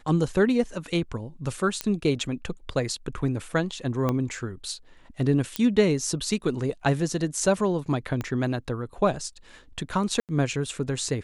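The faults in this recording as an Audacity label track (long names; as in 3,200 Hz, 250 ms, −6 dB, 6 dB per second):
1.810000	1.810000	click −10 dBFS
4.090000	4.090000	click −13 dBFS
5.560000	5.560000	click −10 dBFS
8.210000	8.210000	click −17 dBFS
10.200000	10.290000	drop-out 88 ms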